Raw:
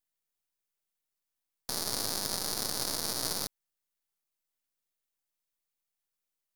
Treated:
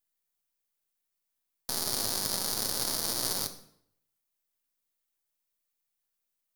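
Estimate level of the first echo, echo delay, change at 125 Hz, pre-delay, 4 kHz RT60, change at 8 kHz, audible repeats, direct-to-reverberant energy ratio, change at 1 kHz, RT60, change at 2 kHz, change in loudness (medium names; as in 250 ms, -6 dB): no echo, no echo, +1.0 dB, 6 ms, 0.55 s, +2.5 dB, no echo, 8.0 dB, +0.5 dB, 0.70 s, +0.5 dB, +2.5 dB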